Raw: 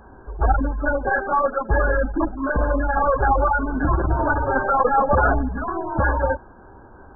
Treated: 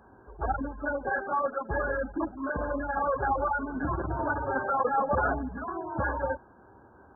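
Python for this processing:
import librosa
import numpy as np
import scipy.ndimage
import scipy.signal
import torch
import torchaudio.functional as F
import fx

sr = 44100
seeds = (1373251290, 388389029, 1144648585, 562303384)

y = scipy.signal.sosfilt(scipy.signal.butter(2, 81.0, 'highpass', fs=sr, output='sos'), x)
y = y * 10.0 ** (-8.5 / 20.0)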